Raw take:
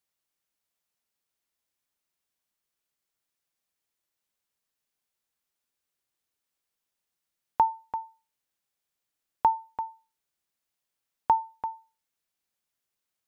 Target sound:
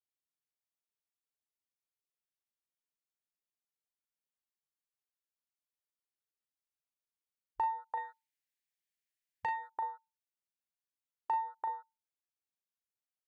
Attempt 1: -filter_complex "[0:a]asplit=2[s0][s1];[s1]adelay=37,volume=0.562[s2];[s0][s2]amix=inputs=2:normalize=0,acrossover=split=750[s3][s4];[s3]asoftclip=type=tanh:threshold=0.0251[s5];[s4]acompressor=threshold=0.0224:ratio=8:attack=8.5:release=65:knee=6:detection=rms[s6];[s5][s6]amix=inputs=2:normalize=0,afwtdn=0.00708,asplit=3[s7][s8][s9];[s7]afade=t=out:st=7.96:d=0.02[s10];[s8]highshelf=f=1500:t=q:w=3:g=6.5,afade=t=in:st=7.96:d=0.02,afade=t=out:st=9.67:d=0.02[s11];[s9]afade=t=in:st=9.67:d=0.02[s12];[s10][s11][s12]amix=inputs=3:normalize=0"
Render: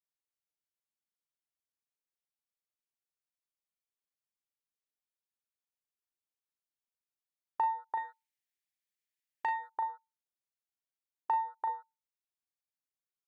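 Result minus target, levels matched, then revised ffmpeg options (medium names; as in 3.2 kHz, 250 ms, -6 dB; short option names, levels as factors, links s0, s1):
compression: peak gain reduction -5.5 dB
-filter_complex "[0:a]asplit=2[s0][s1];[s1]adelay=37,volume=0.562[s2];[s0][s2]amix=inputs=2:normalize=0,acrossover=split=750[s3][s4];[s3]asoftclip=type=tanh:threshold=0.0251[s5];[s4]acompressor=threshold=0.0106:ratio=8:attack=8.5:release=65:knee=6:detection=rms[s6];[s5][s6]amix=inputs=2:normalize=0,afwtdn=0.00708,asplit=3[s7][s8][s9];[s7]afade=t=out:st=7.96:d=0.02[s10];[s8]highshelf=f=1500:t=q:w=3:g=6.5,afade=t=in:st=7.96:d=0.02,afade=t=out:st=9.67:d=0.02[s11];[s9]afade=t=in:st=9.67:d=0.02[s12];[s10][s11][s12]amix=inputs=3:normalize=0"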